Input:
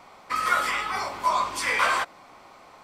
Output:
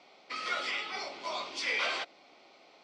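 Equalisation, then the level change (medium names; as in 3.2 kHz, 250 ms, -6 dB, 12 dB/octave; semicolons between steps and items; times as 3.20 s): cabinet simulation 380–5100 Hz, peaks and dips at 510 Hz -3 dB, 1 kHz -4 dB, 1.7 kHz -7 dB; peaking EQ 1.1 kHz -13.5 dB 1.2 oct; 0.0 dB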